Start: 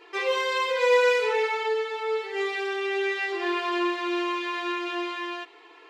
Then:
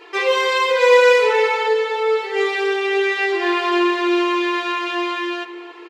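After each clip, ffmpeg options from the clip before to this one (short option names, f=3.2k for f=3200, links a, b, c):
-filter_complex "[0:a]asplit=2[a][b];[b]adelay=279,lowpass=f=1.2k:p=1,volume=-9.5dB,asplit=2[c][d];[d]adelay=279,lowpass=f=1.2k:p=1,volume=0.5,asplit=2[e][f];[f]adelay=279,lowpass=f=1.2k:p=1,volume=0.5,asplit=2[g][h];[h]adelay=279,lowpass=f=1.2k:p=1,volume=0.5,asplit=2[i][j];[j]adelay=279,lowpass=f=1.2k:p=1,volume=0.5,asplit=2[k][l];[l]adelay=279,lowpass=f=1.2k:p=1,volume=0.5[m];[a][c][e][g][i][k][m]amix=inputs=7:normalize=0,volume=8dB"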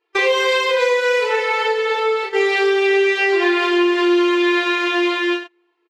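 -filter_complex "[0:a]agate=range=-36dB:threshold=-24dB:ratio=16:detection=peak,acompressor=threshold=-20dB:ratio=6,asplit=2[a][b];[b]adelay=31,volume=-4dB[c];[a][c]amix=inputs=2:normalize=0,volume=5dB"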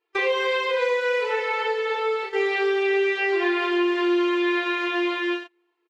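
-filter_complex "[0:a]acrossover=split=3700[a][b];[b]acompressor=threshold=-41dB:ratio=4:attack=1:release=60[c];[a][c]amix=inputs=2:normalize=0,volume=-6dB"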